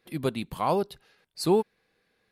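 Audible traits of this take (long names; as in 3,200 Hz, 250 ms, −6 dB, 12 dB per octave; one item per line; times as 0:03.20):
background noise floor −73 dBFS
spectral slope −5.5 dB per octave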